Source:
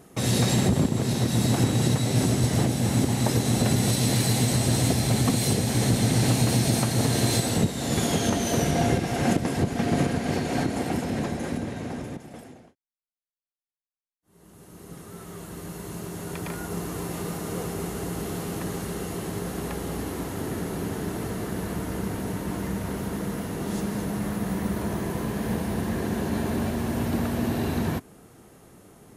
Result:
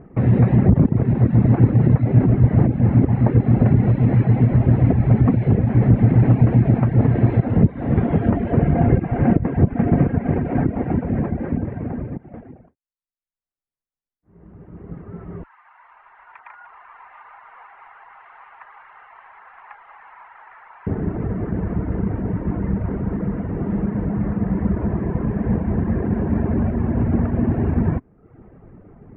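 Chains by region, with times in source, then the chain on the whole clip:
15.43–20.87 s: elliptic high-pass 890 Hz, stop band 80 dB + bit-crushed delay 192 ms, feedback 55%, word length 9-bit, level -13 dB
whole clip: steep low-pass 2.3 kHz 36 dB/octave; reverb removal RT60 0.68 s; tilt EQ -3 dB/octave; trim +2 dB

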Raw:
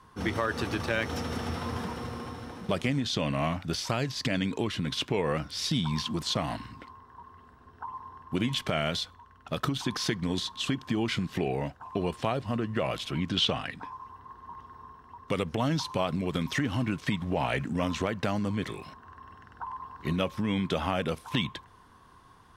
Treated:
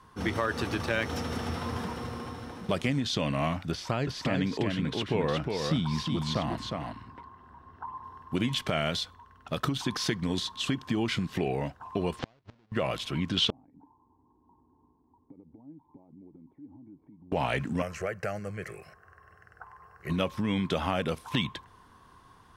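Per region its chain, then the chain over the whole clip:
3.71–8.04 s: treble shelf 3.7 kHz -10.5 dB + delay 360 ms -4 dB
12.19–12.72 s: square wave that keeps the level + low-pass 5.2 kHz 24 dB/octave + inverted gate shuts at -20 dBFS, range -38 dB
13.50–17.32 s: peaking EQ 1.6 kHz +5 dB 0.28 oct + compression 12:1, threshold -38 dBFS + cascade formant filter u
17.82–20.10 s: bass shelf 66 Hz -12 dB + static phaser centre 970 Hz, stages 6
whole clip: none

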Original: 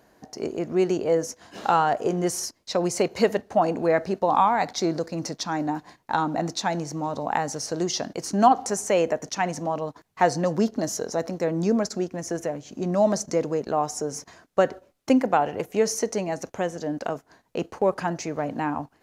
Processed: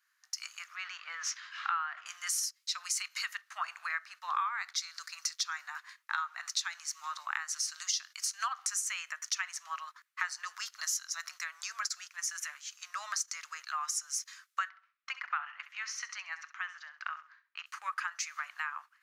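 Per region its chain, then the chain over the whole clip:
0.76–2.06 s: companding laws mixed up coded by mu + distance through air 210 m + decay stretcher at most 100 dB/s
14.69–17.66 s: high-pass 410 Hz 6 dB/octave + distance through air 220 m + feedback delay 66 ms, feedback 29%, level -12.5 dB
whole clip: Chebyshev high-pass 1.2 kHz, order 5; compression 6:1, threshold -41 dBFS; three bands expanded up and down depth 70%; trim +7.5 dB

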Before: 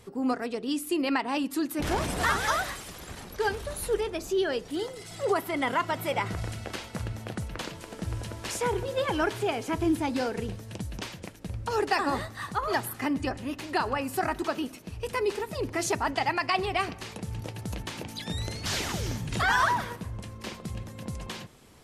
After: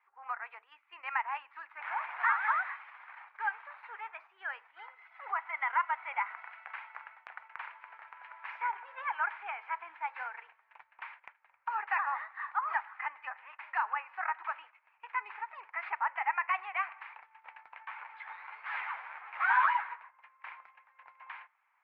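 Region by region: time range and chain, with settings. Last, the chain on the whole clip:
15.76–16.51 s: Butterworth band-stop 3.8 kHz, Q 3.7 + decimation joined by straight lines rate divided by 4×
17.87–19.95 s: square wave that keeps the level + three-phase chorus
whole clip: elliptic band-pass 880–2300 Hz, stop band 60 dB; gate -52 dBFS, range -9 dB; trim -1 dB

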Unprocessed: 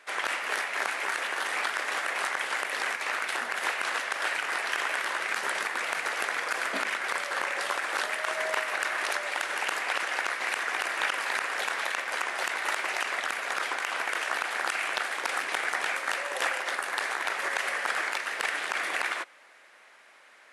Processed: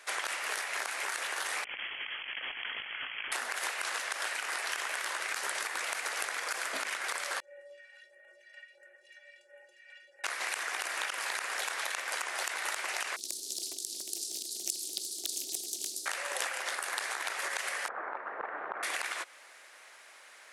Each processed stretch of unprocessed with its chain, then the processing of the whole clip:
1.64–3.32 s: compressor with a negative ratio -33 dBFS, ratio -0.5 + ladder high-pass 410 Hz, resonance 35% + frequency inversion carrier 3.8 kHz
7.40–10.24 s: vowel filter e + phase shifter stages 2, 1.5 Hz, lowest notch 320–4500 Hz + inharmonic resonator 170 Hz, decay 0.35 s, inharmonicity 0.03
13.16–16.06 s: Chebyshev band-stop 370–4300 Hz, order 4 + loudspeaker Doppler distortion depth 0.57 ms
17.88–18.83 s: low-pass 1.3 kHz 24 dB/octave + bass shelf 130 Hz +9.5 dB
whole clip: compression, threshold -33 dBFS; tone controls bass -11 dB, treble +9 dB

